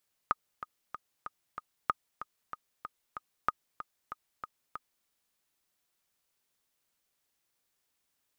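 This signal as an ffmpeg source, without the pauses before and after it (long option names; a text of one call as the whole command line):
ffmpeg -f lavfi -i "aevalsrc='pow(10,(-12.5-13*gte(mod(t,5*60/189),60/189))/20)*sin(2*PI*1240*mod(t,60/189))*exp(-6.91*mod(t,60/189)/0.03)':duration=4.76:sample_rate=44100" out.wav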